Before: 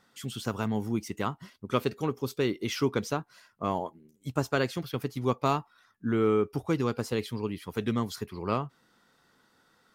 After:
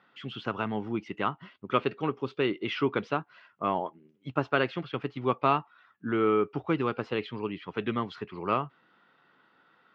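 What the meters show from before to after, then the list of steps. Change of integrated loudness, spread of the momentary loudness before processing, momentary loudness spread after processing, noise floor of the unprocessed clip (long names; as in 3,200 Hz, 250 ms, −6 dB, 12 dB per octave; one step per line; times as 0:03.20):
+0.5 dB, 8 LU, 10 LU, −67 dBFS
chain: loudspeaker in its box 170–3,200 Hz, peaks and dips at 230 Hz −5 dB, 470 Hz −3 dB, 1,300 Hz +3 dB, 2,800 Hz +4 dB
level +2 dB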